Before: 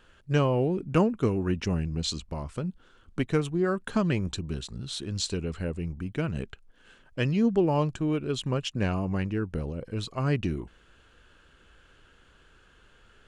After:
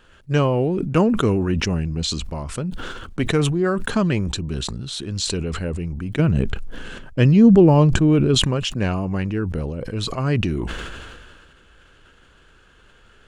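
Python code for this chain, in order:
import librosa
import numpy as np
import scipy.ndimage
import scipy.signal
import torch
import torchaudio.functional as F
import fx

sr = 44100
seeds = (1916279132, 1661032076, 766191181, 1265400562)

y = fx.low_shelf(x, sr, hz=430.0, db=9.0, at=(6.19, 8.35))
y = fx.sustainer(y, sr, db_per_s=29.0)
y = F.gain(torch.from_numpy(y), 5.0).numpy()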